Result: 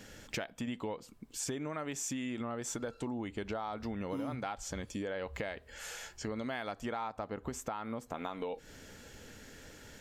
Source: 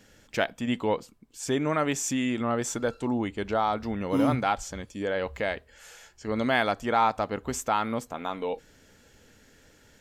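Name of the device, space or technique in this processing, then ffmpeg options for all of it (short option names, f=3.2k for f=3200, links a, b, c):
serial compression, peaks first: -filter_complex "[0:a]acompressor=threshold=-35dB:ratio=5,acompressor=threshold=-44dB:ratio=2,asplit=3[a][b][c];[a]afade=t=out:st=7.07:d=0.02[d];[b]adynamicequalizer=threshold=0.00126:dfrequency=2000:dqfactor=0.7:tfrequency=2000:tqfactor=0.7:attack=5:release=100:ratio=0.375:range=2.5:mode=cutabove:tftype=highshelf,afade=t=in:st=7.07:d=0.02,afade=t=out:st=8.13:d=0.02[e];[c]afade=t=in:st=8.13:d=0.02[f];[d][e][f]amix=inputs=3:normalize=0,volume=5dB"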